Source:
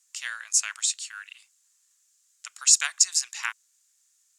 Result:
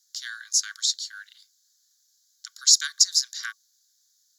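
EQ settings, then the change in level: rippled Chebyshev high-pass 1.1 kHz, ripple 9 dB; tilt EQ +5 dB/octave; static phaser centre 2.6 kHz, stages 6; -2.0 dB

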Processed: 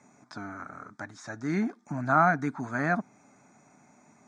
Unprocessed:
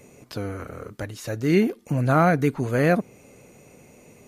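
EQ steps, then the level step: distance through air 110 m; cabinet simulation 320–8200 Hz, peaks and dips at 370 Hz -9 dB, 1.1 kHz -5 dB, 2 kHz -5 dB, 4.4 kHz -7 dB; static phaser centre 1.2 kHz, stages 4; +4.0 dB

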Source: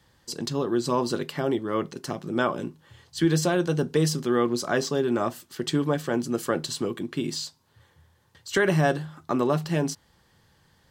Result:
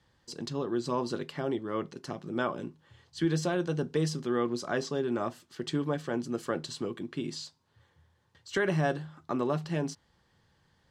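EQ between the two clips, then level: distance through air 50 m; -6.0 dB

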